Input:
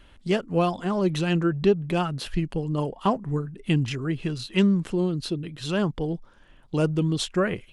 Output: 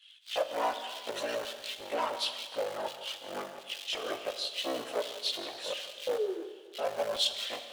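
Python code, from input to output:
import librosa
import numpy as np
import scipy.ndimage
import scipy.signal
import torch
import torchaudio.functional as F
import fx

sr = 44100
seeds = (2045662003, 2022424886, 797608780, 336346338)

y = fx.cycle_switch(x, sr, every=3, mode='inverted')
y = scipy.signal.sosfilt(scipy.signal.butter(2, 110.0, 'highpass', fs=sr, output='sos'), y)
y = fx.peak_eq(y, sr, hz=440.0, db=-3.0, octaves=1.4)
y = 10.0 ** (-27.5 / 20.0) * np.tanh(y / 10.0 ** (-27.5 / 20.0))
y = fx.spec_paint(y, sr, seeds[0], shape='fall', start_s=5.9, length_s=0.51, low_hz=320.0, high_hz=650.0, level_db=-29.0)
y = fx.filter_lfo_highpass(y, sr, shape='square', hz=1.4, low_hz=580.0, high_hz=3300.0, q=3.4)
y = fx.chorus_voices(y, sr, voices=6, hz=0.39, base_ms=19, depth_ms=2.0, mix_pct=65)
y = y + 10.0 ** (-14.5 / 20.0) * np.pad(y, (int(169 * sr / 1000.0), 0))[:len(y)]
y = fx.rev_schroeder(y, sr, rt60_s=1.6, comb_ms=26, drr_db=10.0)
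y = fx.echo_warbled(y, sr, ms=293, feedback_pct=33, rate_hz=2.8, cents=68, wet_db=-20)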